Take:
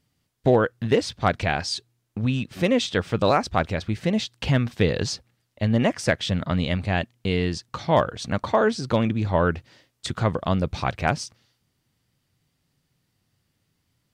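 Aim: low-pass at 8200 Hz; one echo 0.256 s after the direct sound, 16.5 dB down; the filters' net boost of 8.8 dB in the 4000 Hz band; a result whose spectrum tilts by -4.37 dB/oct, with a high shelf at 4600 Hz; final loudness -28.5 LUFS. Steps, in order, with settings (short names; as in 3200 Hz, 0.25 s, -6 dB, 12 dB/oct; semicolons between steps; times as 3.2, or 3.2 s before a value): LPF 8200 Hz; bell 4000 Hz +6.5 dB; high shelf 4600 Hz +9 dB; echo 0.256 s -16.5 dB; gain -6 dB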